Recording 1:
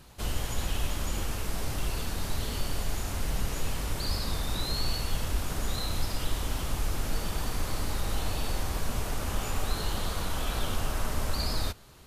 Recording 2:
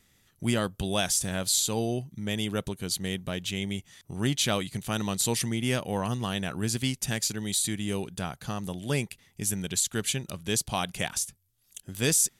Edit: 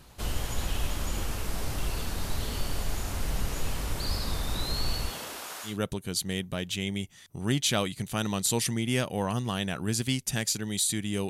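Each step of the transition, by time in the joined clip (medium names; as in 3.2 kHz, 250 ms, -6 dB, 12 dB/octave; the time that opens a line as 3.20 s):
recording 1
5.09–5.77 s: high-pass 210 Hz -> 1.3 kHz
5.70 s: go over to recording 2 from 2.45 s, crossfade 0.14 s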